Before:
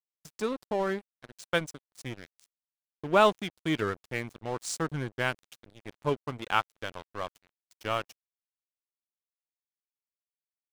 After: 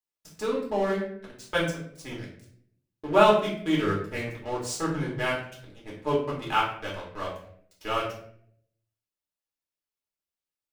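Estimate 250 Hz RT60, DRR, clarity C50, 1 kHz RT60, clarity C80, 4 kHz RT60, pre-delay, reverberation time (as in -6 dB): 0.90 s, -5.0 dB, 5.0 dB, 0.55 s, 8.5 dB, 0.40 s, 3 ms, 0.65 s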